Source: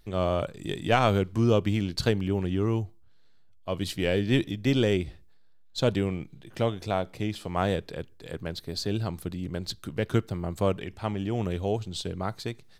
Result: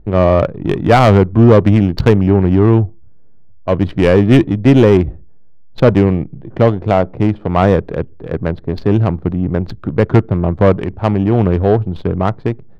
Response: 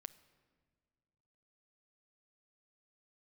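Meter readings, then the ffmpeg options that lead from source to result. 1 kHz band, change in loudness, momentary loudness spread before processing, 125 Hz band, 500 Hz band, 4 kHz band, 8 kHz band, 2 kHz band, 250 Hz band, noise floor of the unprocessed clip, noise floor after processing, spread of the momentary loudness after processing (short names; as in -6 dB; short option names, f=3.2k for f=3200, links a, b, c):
+14.0 dB, +15.5 dB, 12 LU, +16.0 dB, +15.5 dB, +3.5 dB, n/a, +11.0 dB, +16.0 dB, -52 dBFS, -35 dBFS, 11 LU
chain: -af "adynamicsmooth=sensitivity=3:basefreq=630,aeval=exprs='0.398*sin(PI/2*2.24*val(0)/0.398)':c=same,lowpass=f=2k:p=1,volume=6.5dB"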